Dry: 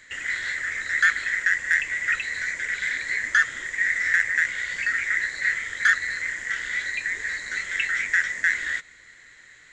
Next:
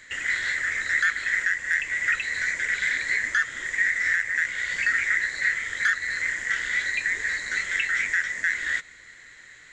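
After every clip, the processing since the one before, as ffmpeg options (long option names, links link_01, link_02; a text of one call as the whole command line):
ffmpeg -i in.wav -af "alimiter=limit=-14.5dB:level=0:latency=1:release=315,volume=2dB" out.wav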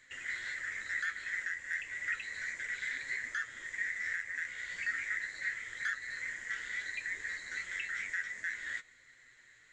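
ffmpeg -i in.wav -af "flanger=delay=7.4:depth=4.3:regen=50:speed=0.33:shape=triangular,volume=-9dB" out.wav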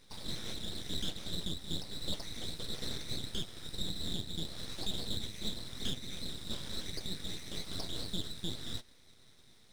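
ffmpeg -i in.wav -af "aeval=exprs='abs(val(0))':channel_layout=same,volume=2dB" out.wav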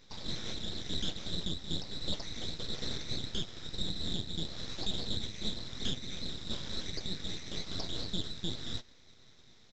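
ffmpeg -i in.wav -af "aresample=16000,aresample=44100,volume=2dB" out.wav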